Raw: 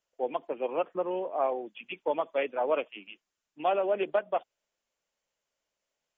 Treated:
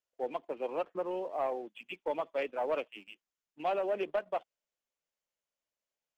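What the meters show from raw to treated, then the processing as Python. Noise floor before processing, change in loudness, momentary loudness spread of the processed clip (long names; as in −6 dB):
below −85 dBFS, −5.0 dB, 8 LU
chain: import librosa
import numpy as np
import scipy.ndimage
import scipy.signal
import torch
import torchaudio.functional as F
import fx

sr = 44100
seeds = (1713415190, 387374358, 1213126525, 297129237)

y = fx.leveller(x, sr, passes=1)
y = y * 10.0 ** (-7.5 / 20.0)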